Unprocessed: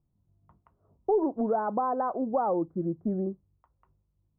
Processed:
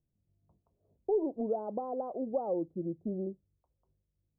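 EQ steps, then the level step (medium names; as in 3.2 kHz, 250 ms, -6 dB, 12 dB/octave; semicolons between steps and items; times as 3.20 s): four-pole ladder low-pass 710 Hz, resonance 35%; 0.0 dB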